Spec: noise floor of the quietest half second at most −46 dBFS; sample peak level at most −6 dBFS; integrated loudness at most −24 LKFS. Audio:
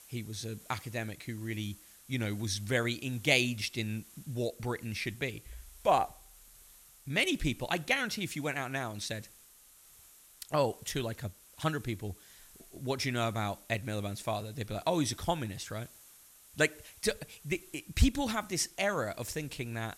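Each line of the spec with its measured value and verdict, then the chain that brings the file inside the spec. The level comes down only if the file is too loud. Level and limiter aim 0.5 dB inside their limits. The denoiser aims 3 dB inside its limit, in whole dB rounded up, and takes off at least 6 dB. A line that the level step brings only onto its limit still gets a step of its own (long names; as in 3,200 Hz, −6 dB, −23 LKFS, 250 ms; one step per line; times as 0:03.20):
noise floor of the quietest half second −59 dBFS: in spec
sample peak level −10.0 dBFS: in spec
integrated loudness −34.0 LKFS: in spec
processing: no processing needed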